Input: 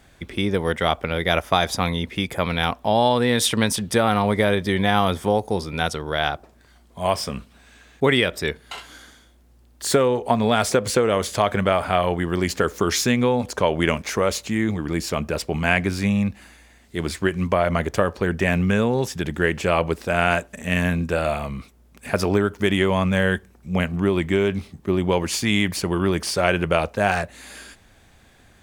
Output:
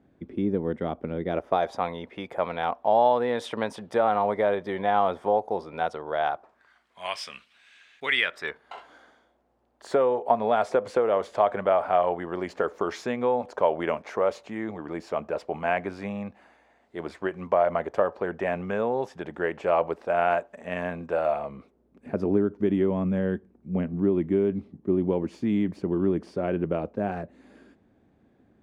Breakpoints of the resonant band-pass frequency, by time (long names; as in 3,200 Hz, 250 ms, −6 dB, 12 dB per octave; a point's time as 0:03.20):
resonant band-pass, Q 1.4
0:01.23 270 Hz
0:01.73 700 Hz
0:06.21 700 Hz
0:07.16 2,600 Hz
0:08.06 2,600 Hz
0:08.75 700 Hz
0:21.31 700 Hz
0:22.08 280 Hz